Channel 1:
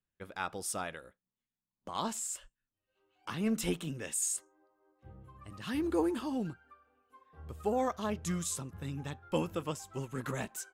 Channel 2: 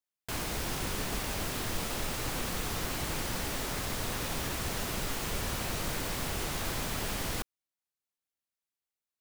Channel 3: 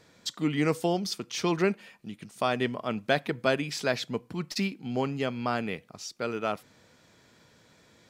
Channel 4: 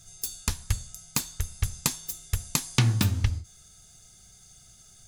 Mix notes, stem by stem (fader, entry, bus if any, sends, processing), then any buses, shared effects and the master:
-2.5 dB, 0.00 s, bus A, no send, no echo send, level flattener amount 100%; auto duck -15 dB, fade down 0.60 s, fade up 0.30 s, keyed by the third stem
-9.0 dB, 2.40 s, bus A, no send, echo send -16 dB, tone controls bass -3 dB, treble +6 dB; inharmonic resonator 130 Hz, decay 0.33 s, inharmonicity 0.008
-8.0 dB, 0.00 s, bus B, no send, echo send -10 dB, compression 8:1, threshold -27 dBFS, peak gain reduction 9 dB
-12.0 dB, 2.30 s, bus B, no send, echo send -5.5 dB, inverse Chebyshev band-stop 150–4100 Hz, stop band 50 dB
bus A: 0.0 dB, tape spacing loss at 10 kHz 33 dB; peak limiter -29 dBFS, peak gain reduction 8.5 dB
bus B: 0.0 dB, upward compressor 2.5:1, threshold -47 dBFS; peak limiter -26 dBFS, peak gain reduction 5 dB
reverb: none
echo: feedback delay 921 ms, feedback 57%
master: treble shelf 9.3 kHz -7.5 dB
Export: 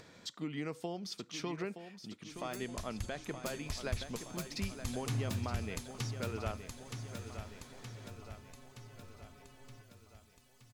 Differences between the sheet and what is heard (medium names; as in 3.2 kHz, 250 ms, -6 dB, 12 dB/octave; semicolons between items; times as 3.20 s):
stem 1: muted; stem 4: missing inverse Chebyshev band-stop 150–4100 Hz, stop band 50 dB